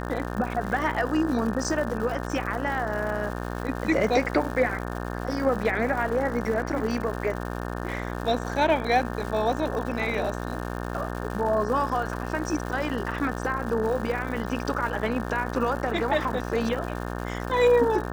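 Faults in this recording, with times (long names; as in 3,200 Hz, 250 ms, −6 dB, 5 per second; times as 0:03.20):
mains buzz 60 Hz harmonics 30 −32 dBFS
surface crackle 220 per second −33 dBFS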